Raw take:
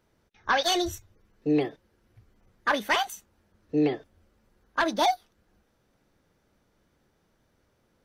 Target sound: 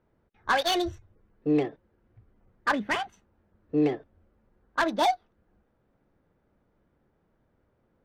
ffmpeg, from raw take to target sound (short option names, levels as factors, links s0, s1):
-filter_complex "[0:a]asplit=3[s0][s1][s2];[s0]afade=t=out:st=2.71:d=0.02[s3];[s1]equalizer=f=125:t=o:w=1:g=12,equalizer=f=250:t=o:w=1:g=3,equalizer=f=500:t=o:w=1:g=-4,equalizer=f=1000:t=o:w=1:g=-4,equalizer=f=4000:t=o:w=1:g=-4,equalizer=f=8000:t=o:w=1:g=-10,afade=t=in:st=2.71:d=0.02,afade=t=out:st=3.12:d=0.02[s4];[s2]afade=t=in:st=3.12:d=0.02[s5];[s3][s4][s5]amix=inputs=3:normalize=0,adynamicsmooth=sensitivity=3:basefreq=1900"